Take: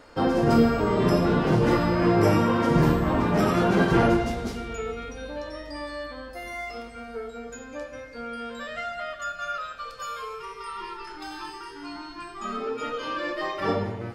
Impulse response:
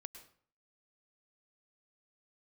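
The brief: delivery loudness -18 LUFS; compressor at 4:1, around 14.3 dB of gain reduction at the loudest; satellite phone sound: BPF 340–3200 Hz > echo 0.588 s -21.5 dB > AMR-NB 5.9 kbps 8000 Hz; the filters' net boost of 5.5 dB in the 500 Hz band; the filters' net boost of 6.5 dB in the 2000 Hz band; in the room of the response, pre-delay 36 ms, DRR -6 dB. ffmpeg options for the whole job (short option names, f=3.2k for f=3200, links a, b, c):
-filter_complex "[0:a]equalizer=f=500:t=o:g=8,equalizer=f=2k:t=o:g=8.5,acompressor=threshold=-29dB:ratio=4,asplit=2[a][b];[1:a]atrim=start_sample=2205,adelay=36[c];[b][c]afir=irnorm=-1:irlink=0,volume=11.5dB[d];[a][d]amix=inputs=2:normalize=0,highpass=340,lowpass=3.2k,aecho=1:1:588:0.0841,volume=9.5dB" -ar 8000 -c:a libopencore_amrnb -b:a 5900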